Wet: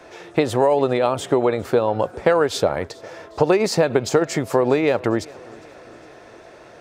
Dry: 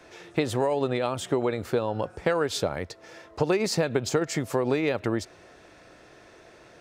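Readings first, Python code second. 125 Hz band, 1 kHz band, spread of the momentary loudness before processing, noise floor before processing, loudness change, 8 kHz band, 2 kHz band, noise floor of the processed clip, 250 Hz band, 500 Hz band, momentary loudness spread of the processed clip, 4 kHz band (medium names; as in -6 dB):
+4.0 dB, +8.5 dB, 7 LU, -53 dBFS, +7.5 dB, +3.5 dB, +5.5 dB, -44 dBFS, +6.0 dB, +8.5 dB, 8 LU, +4.0 dB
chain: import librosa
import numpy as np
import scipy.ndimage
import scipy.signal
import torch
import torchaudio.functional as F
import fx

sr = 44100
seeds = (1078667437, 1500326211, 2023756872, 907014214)

p1 = fx.peak_eq(x, sr, hz=690.0, db=6.0, octaves=2.1)
p2 = p1 + fx.echo_feedback(p1, sr, ms=406, feedback_pct=57, wet_db=-23.5, dry=0)
y = F.gain(torch.from_numpy(p2), 3.5).numpy()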